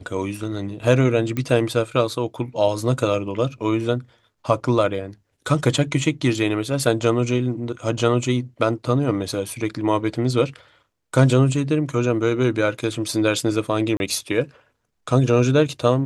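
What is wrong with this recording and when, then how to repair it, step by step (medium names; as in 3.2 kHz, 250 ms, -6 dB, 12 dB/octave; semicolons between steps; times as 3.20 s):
1.37 s: pop -13 dBFS
13.97–14.00 s: dropout 31 ms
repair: de-click; interpolate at 13.97 s, 31 ms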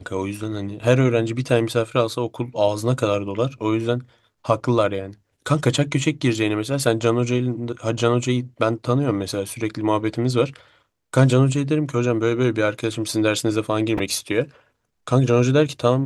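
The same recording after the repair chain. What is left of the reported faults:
nothing left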